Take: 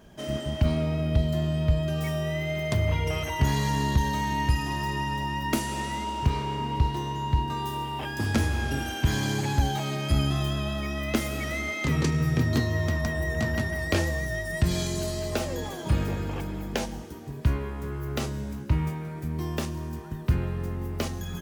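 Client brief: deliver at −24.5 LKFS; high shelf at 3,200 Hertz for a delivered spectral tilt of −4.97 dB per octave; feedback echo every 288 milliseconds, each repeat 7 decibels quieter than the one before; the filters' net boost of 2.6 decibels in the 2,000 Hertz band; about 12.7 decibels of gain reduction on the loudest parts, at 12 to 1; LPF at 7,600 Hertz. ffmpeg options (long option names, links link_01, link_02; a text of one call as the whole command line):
ffmpeg -i in.wav -af "lowpass=7600,equalizer=frequency=2000:width_type=o:gain=4,highshelf=frequency=3200:gain=-3.5,acompressor=threshold=-30dB:ratio=12,aecho=1:1:288|576|864|1152|1440:0.447|0.201|0.0905|0.0407|0.0183,volume=9dB" out.wav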